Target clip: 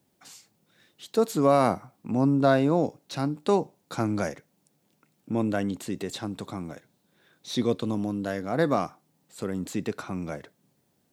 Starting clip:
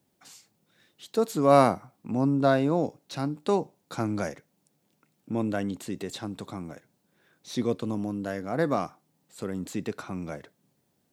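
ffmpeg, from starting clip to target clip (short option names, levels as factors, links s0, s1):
-filter_complex "[0:a]asettb=1/sr,asplit=3[s0][s1][s2];[s0]atrim=end=6.584[s3];[s1]atrim=start=6.58:end=8.72,asetpts=PTS-STARTPTS,afade=t=in:d=0.004:c=qsin,afade=t=out:st=2.136:d=0.004:c=qsin,equalizer=f=3700:w=3.7:g=5.5[s4];[s2]atrim=start=8.716[s5];[s3][s4]acrossfade=d=0.004:c1=hsin:c2=qsin[s6];[s6][s5]acrossfade=d=0.004:c1=qsin:c2=hsin,alimiter=level_in=2.99:limit=0.891:release=50:level=0:latency=1,volume=0.422"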